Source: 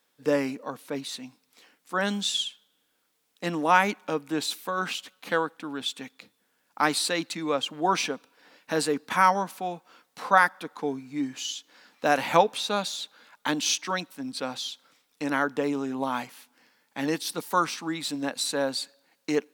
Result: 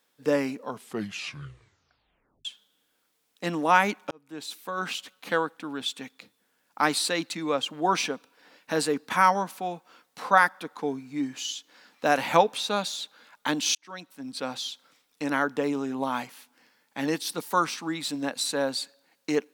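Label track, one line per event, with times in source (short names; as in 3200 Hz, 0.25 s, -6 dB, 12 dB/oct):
0.580000	0.580000	tape stop 1.87 s
4.110000	4.990000	fade in
13.750000	14.480000	fade in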